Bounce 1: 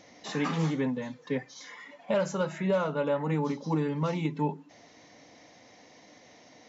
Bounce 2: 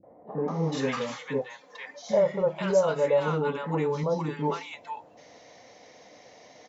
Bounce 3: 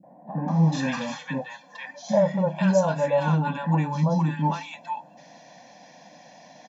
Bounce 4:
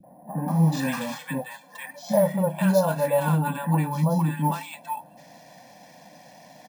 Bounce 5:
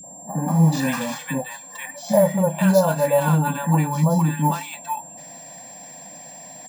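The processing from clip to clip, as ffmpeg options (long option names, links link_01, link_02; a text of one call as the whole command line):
ffmpeg -i in.wav -filter_complex "[0:a]firequalizer=gain_entry='entry(290,0);entry(450,8);entry(1700,2)':delay=0.05:min_phase=1,acrossover=split=310|980[link_01][link_02][link_03];[link_02]adelay=30[link_04];[link_03]adelay=480[link_05];[link_01][link_04][link_05]amix=inputs=3:normalize=0" out.wav
ffmpeg -i in.wav -af "lowshelf=frequency=120:width_type=q:width=3:gain=-12,aecho=1:1:1.2:0.97" out.wav
ffmpeg -i in.wav -filter_complex "[0:a]acrossover=split=100|1100[link_01][link_02][link_03];[link_01]acompressor=mode=upward:threshold=-56dB:ratio=2.5[link_04];[link_04][link_02][link_03]amix=inputs=3:normalize=0,acrusher=samples=4:mix=1:aa=0.000001" out.wav
ffmpeg -i in.wav -af "aeval=exprs='val(0)+0.00708*sin(2*PI*7400*n/s)':channel_layout=same,volume=4dB" out.wav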